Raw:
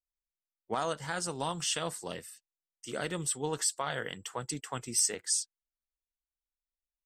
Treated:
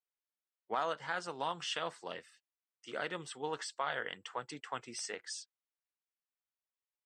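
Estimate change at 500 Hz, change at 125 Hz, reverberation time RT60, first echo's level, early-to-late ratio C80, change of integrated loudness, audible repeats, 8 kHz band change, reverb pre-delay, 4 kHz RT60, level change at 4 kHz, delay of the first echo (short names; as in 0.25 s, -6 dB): -4.0 dB, -13.0 dB, none, none, none, -7.0 dB, none, -16.0 dB, none, none, -5.5 dB, none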